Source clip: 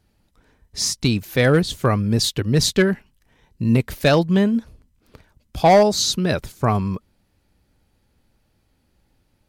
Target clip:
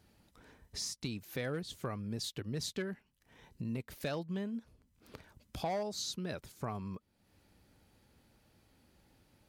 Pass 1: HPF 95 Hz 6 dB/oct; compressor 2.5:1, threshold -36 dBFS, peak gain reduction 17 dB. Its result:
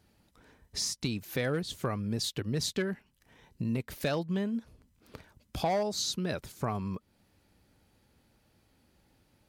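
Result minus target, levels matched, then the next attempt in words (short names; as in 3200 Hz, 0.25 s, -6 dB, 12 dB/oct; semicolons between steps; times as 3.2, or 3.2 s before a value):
compressor: peak gain reduction -6.5 dB
HPF 95 Hz 6 dB/oct; compressor 2.5:1, threshold -47 dBFS, peak gain reduction 23.5 dB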